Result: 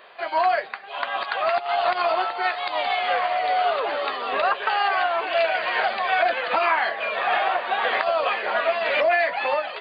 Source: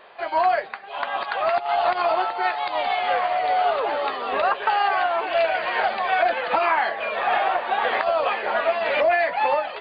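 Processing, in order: tilt EQ +1.5 dB/octave; band-stop 860 Hz, Q 12

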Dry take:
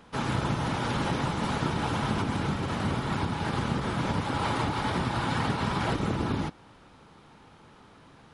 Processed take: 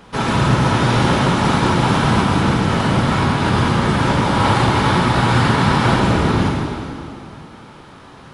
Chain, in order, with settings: plate-style reverb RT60 2.5 s, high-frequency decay 0.9×, DRR -2.5 dB; trim +9 dB

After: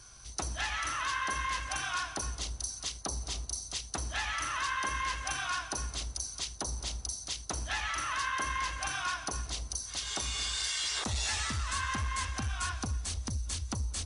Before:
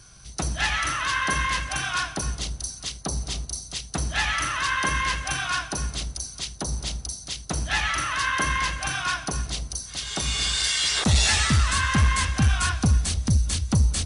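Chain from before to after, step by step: compression 3:1, threshold -29 dBFS, peak gain reduction 10.5 dB; fifteen-band graphic EQ 160 Hz -10 dB, 1 kHz +4 dB, 6.3 kHz +3 dB; trim -4.5 dB

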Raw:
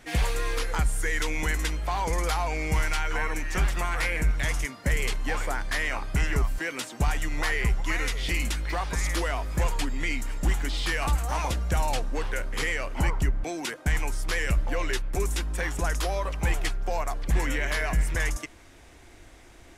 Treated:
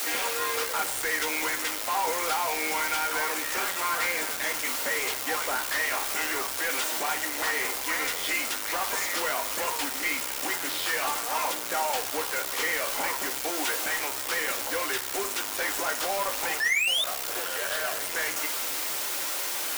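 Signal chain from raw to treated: 16.61–18.05 s: static phaser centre 1.4 kHz, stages 8; word length cut 6-bit, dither triangular; in parallel at -6.5 dB: integer overflow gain 26 dB; 16.60–17.04 s: on the sum: painted sound rise 1.7–3.7 kHz -21 dBFS; high-pass 370 Hz 24 dB/octave; saturation -29 dBFS, distortion -9 dB; on a send at -3.5 dB: reverberation RT60 0.45 s, pre-delay 3 ms; on the sum: trim +4.5 dB

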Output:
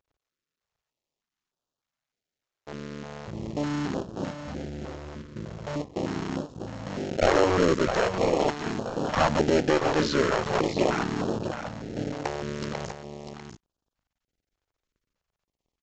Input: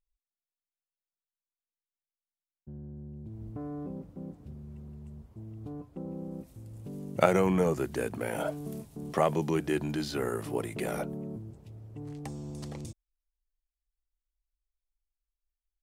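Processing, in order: cycle switcher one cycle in 2, muted; overdrive pedal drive 27 dB, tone 1.1 kHz, clips at -6.5 dBFS; in parallel at -11 dB: sample-rate reducer 1.2 kHz, jitter 0%; on the sum: tone controls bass 0 dB, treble +5 dB; on a send: delay 646 ms -8.5 dB; on the sum: resampled via 16 kHz; step-sequenced notch 3.3 Hz 200–2100 Hz

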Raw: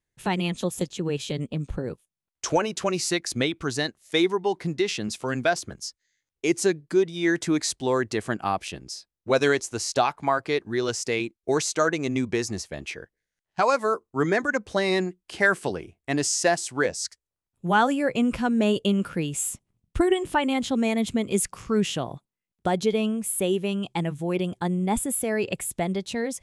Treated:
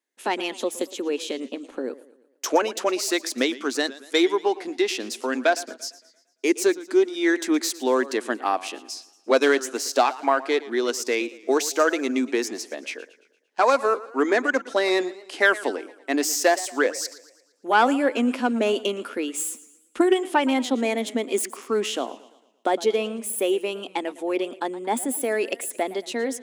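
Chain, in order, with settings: self-modulated delay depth 0.064 ms; elliptic high-pass 250 Hz, stop band 40 dB; modulated delay 114 ms, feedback 48%, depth 132 cents, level -18 dB; trim +3 dB

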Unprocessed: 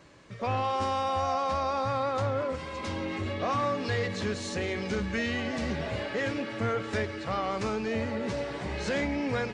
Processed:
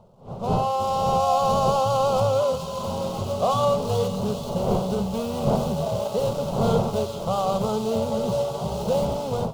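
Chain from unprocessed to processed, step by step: median filter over 25 samples; wind noise 350 Hz -35 dBFS; resonant low shelf 110 Hz -9 dB, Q 1.5; feedback echo behind a high-pass 426 ms, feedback 74%, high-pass 2.9 kHz, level -5 dB; level rider gain up to 13 dB; peaking EQ 2.3 kHz -9 dB 0.22 oct; static phaser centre 730 Hz, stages 4; trim -1 dB

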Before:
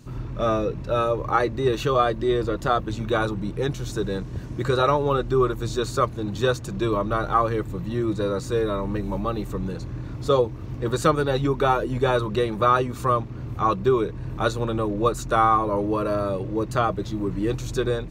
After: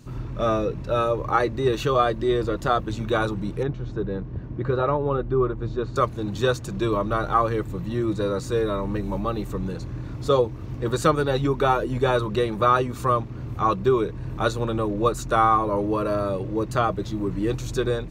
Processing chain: 3.63–5.96 s: tape spacing loss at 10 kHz 37 dB

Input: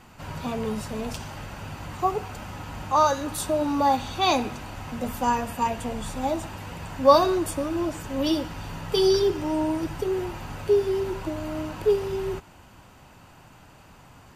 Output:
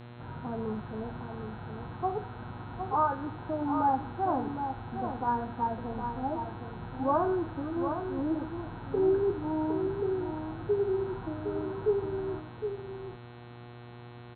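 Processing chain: steep low-pass 1.7 kHz 96 dB/octave; comb of notches 570 Hz; de-hum 81.57 Hz, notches 40; mains buzz 120 Hz, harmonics 35, -42 dBFS -6 dB/octave; on a send: delay 761 ms -7.5 dB; on the sum: trim -5 dB

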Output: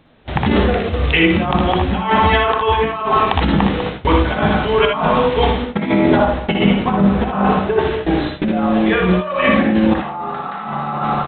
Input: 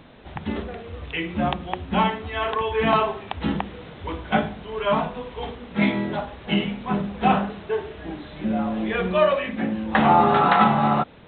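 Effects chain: dynamic bell 1.1 kHz, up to +7 dB, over -35 dBFS, Q 2.3; delay 198 ms -17.5 dB; gate with hold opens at -27 dBFS; 5.65–7.79 s: treble shelf 2.2 kHz -8 dB; compressor with a negative ratio -28 dBFS, ratio -1; band-stop 1 kHz, Q 28; early reflections 61 ms -6 dB, 77 ms -7.5 dB; loudness maximiser +11 dB; trim -1 dB

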